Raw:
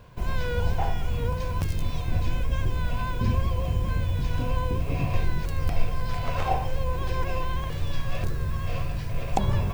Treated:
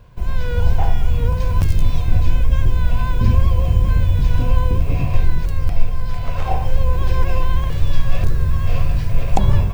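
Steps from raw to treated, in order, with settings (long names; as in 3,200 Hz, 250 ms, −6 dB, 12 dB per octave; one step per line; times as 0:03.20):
low-shelf EQ 95 Hz +10 dB
automatic gain control
level −1 dB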